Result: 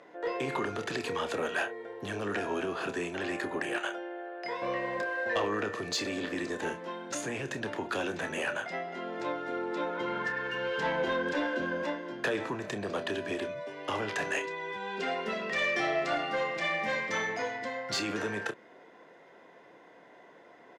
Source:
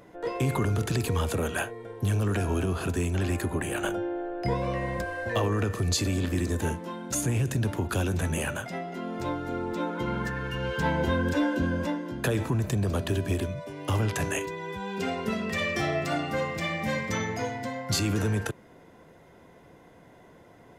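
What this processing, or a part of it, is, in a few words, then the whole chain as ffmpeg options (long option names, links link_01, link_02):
intercom: -filter_complex "[0:a]asettb=1/sr,asplit=3[link_01][link_02][link_03];[link_01]atrim=end=3.784[link_04];[link_02]atrim=start=3.78:end=4.62,asetpts=PTS-STARTPTS,afade=type=in:duration=0.004:curve=qsin,afade=type=out:start_time=0.836:duration=0.004:curve=qsin,highpass=frequency=970:poles=1[link_05];[link_03]atrim=start=4.616[link_06];[link_04][link_05]acrossfade=duration=0.004:curve1=hsin:curve2=qsin[link_07];[link_07][link_06]acrossfade=duration=0.004:curve1=qsin:curve2=hsin,highpass=360,lowpass=4800,equalizer=frequency=1800:width_type=o:width=0.29:gain=4.5,asoftclip=type=tanh:threshold=-21dB,asplit=2[link_08][link_09];[link_09]adelay=29,volume=-10dB[link_10];[link_08][link_10]amix=inputs=2:normalize=0"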